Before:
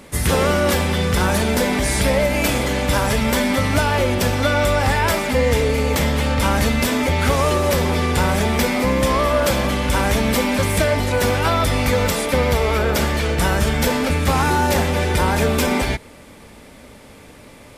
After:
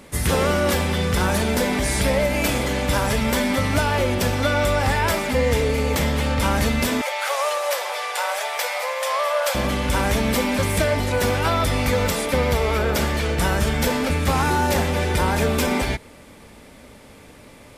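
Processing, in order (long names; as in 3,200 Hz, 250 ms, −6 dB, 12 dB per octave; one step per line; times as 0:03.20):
0:07.01–0:09.55: Butterworth high-pass 540 Hz 48 dB per octave
level −2.5 dB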